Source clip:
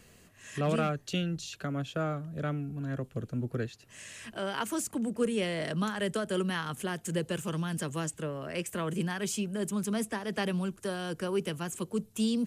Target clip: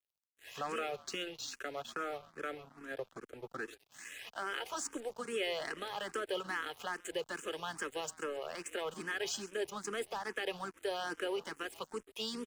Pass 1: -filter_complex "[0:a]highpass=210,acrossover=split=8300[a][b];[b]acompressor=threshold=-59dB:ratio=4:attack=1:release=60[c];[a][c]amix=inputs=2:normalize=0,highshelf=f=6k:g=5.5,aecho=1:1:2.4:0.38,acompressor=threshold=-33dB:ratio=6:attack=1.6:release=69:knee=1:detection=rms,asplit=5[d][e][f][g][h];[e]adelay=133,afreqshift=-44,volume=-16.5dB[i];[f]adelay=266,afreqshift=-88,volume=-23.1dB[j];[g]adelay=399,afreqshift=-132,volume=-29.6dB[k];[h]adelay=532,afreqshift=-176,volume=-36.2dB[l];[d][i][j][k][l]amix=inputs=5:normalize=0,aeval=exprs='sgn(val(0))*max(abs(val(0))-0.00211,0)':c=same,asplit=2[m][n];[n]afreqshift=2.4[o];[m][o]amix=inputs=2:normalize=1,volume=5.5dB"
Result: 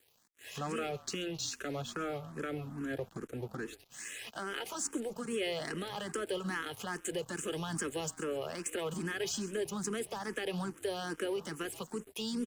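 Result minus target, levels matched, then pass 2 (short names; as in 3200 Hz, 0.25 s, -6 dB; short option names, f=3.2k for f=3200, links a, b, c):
250 Hz band +6.0 dB; 8000 Hz band +3.0 dB
-filter_complex "[0:a]highpass=530,acrossover=split=8300[a][b];[b]acompressor=threshold=-59dB:ratio=4:attack=1:release=60[c];[a][c]amix=inputs=2:normalize=0,highshelf=f=6k:g=-5.5,aecho=1:1:2.4:0.38,acompressor=threshold=-33dB:ratio=6:attack=1.6:release=69:knee=1:detection=rms,asplit=5[d][e][f][g][h];[e]adelay=133,afreqshift=-44,volume=-16.5dB[i];[f]adelay=266,afreqshift=-88,volume=-23.1dB[j];[g]adelay=399,afreqshift=-132,volume=-29.6dB[k];[h]adelay=532,afreqshift=-176,volume=-36.2dB[l];[d][i][j][k][l]amix=inputs=5:normalize=0,aeval=exprs='sgn(val(0))*max(abs(val(0))-0.00211,0)':c=same,asplit=2[m][n];[n]afreqshift=2.4[o];[m][o]amix=inputs=2:normalize=1,volume=5.5dB"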